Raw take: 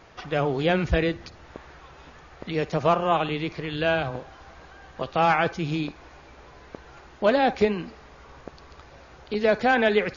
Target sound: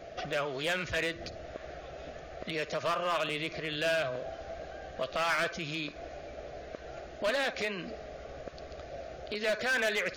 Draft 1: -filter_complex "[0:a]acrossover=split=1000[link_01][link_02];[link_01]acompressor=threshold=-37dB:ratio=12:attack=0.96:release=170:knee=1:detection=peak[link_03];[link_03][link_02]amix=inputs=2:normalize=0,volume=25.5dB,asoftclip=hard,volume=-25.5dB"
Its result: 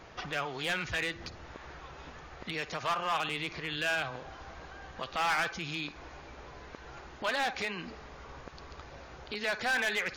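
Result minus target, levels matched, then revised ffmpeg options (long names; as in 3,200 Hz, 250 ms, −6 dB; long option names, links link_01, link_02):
500 Hz band −6.5 dB
-filter_complex "[0:a]acrossover=split=1000[link_01][link_02];[link_01]acompressor=threshold=-37dB:ratio=12:attack=0.96:release=170:knee=1:detection=peak,lowpass=frequency=650:width_type=q:width=6.3[link_03];[link_03][link_02]amix=inputs=2:normalize=0,volume=25.5dB,asoftclip=hard,volume=-25.5dB"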